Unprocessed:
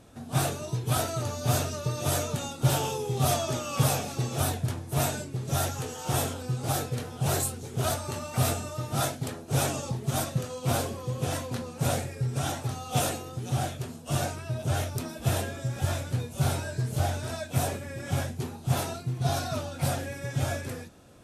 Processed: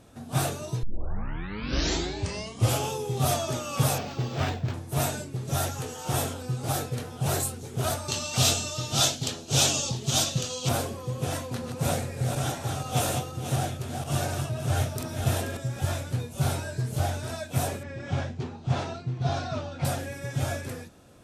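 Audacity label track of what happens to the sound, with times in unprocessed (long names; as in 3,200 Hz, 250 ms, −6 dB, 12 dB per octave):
0.830000	0.830000	tape start 2.07 s
3.980000	4.740000	linearly interpolated sample-rate reduction rate divided by 4×
8.080000	10.690000	flat-topped bell 4,500 Hz +13 dB
11.390000	15.570000	feedback delay that plays each chunk backwards 241 ms, feedback 47%, level −5 dB
17.830000	19.850000	Bessel low-pass filter 4,300 Hz, order 6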